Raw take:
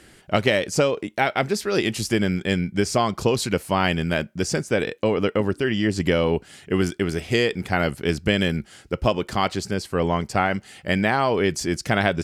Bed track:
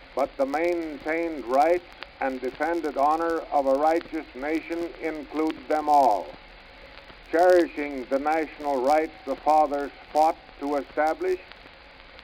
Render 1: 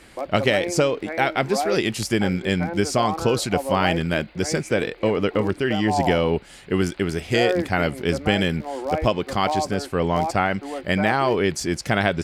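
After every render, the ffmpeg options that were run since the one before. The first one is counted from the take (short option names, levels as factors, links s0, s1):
-filter_complex "[1:a]volume=0.562[s0];[0:a][s0]amix=inputs=2:normalize=0"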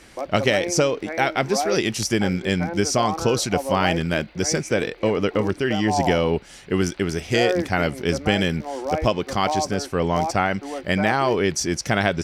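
-af "equalizer=f=5800:w=5.4:g=10"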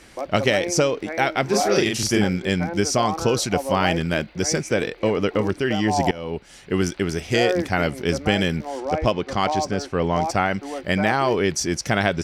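-filter_complex "[0:a]asettb=1/sr,asplit=3[s0][s1][s2];[s0]atrim=end=1.454[s3];[s1]atrim=start=1.45:end=2.24,asetpts=PTS-STARTPTS,afade=t=in:d=0.004:c=qsin,afade=t=out:st=0.786:d=0.004:c=qsin,asplit=2[s4][s5];[s5]adelay=39,volume=0.708[s6];[s4][s6]amix=inputs=2:normalize=0,atrim=end_sample=34839[s7];[s2]atrim=start=2.236[s8];[s3][s7]acrossfade=d=0.004:c1=hsin:c2=qsin[s9];[s9][s8]acrossfade=d=0.004:c1=qsin:c2=hsin,asettb=1/sr,asplit=3[s10][s11][s12];[s10]atrim=end=8.804[s13];[s11]atrim=start=8.8:end=10.25,asetpts=PTS-STARTPTS,afade=t=in:d=0.004:c=qsin,afade=t=out:st=1.446:d=0.004:c=qsin,adynamicsmooth=sensitivity=1.5:basefreq=6200[s14];[s12]atrim=start=10.246[s15];[s13][s14]acrossfade=d=0.004:c1=hsin:c2=qsin[s16];[s16][s15]acrossfade=d=0.004:c1=qsin:c2=hsin,asplit=2[s17][s18];[s17]atrim=end=6.11,asetpts=PTS-STARTPTS,afade=t=out:st=6.106:d=0.004:c=hsin:silence=0.0891251[s19];[s18]atrim=start=6.11,asetpts=PTS-STARTPTS,afade=t=in:d=0.8:c=qsin:silence=0.0891251[s20];[s19][s20]concat=n=2:v=0:a=1"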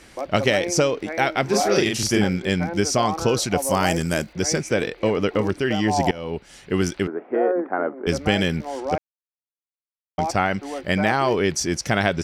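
-filter_complex "[0:a]asettb=1/sr,asplit=3[s0][s1][s2];[s0]atrim=end=3.624[s3];[s1]atrim=start=3.62:end=4.33,asetpts=PTS-STARTPTS,afade=t=in:d=0.004:c=qsin,afade=t=out:st=0.706:d=0.004:c=qsin,highshelf=f=5000:t=q:w=1.5:g=12[s4];[s2]atrim=start=4.326[s5];[s3][s4]acrossfade=d=0.004:c1=hsin:c2=qsin[s6];[s6][s5]acrossfade=d=0.004:c1=qsin:c2=hsin,asettb=1/sr,asplit=3[s7][s8][s9];[s7]atrim=end=7.074[s10];[s8]atrim=start=7.07:end=8.07,asetpts=PTS-STARTPTS,afade=t=in:d=0.004:c=qsin,afade=t=out:st=0.996:d=0.004:c=qsin,asuperpass=centerf=610:order=8:qfactor=0.52[s11];[s9]atrim=start=8.066[s12];[s10][s11]acrossfade=d=0.004:c1=hsin:c2=qsin[s13];[s13][s12]acrossfade=d=0.004:c1=qsin:c2=hsin,asplit=3[s14][s15][s16];[s14]atrim=end=8.98,asetpts=PTS-STARTPTS,afade=t=out:st=8.976:d=0.004:c=hsin[s17];[s15]atrim=start=8.98:end=10.18,asetpts=PTS-STARTPTS,volume=0[s18];[s16]atrim=start=10.18,asetpts=PTS-STARTPTS,afade=t=in:d=0.004:c=hsin[s19];[s17][s18][s19]concat=n=3:v=0:a=1"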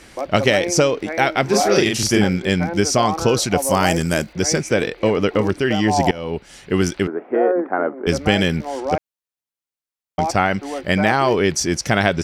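-af "volume=1.5"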